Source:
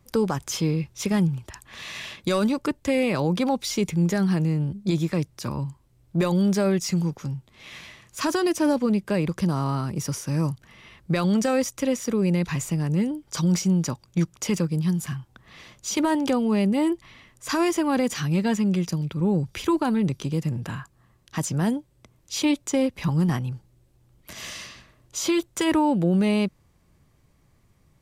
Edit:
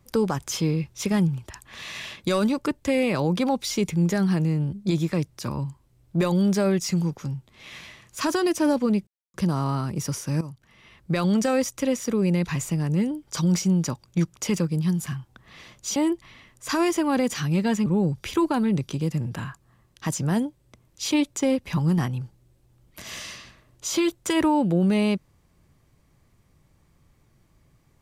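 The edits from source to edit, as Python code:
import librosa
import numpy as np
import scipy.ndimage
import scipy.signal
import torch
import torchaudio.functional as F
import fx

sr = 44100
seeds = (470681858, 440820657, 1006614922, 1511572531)

y = fx.edit(x, sr, fx.silence(start_s=9.07, length_s=0.27),
    fx.fade_in_from(start_s=10.41, length_s=0.84, floor_db=-14.0),
    fx.cut(start_s=15.96, length_s=0.8),
    fx.cut(start_s=18.66, length_s=0.51), tone=tone)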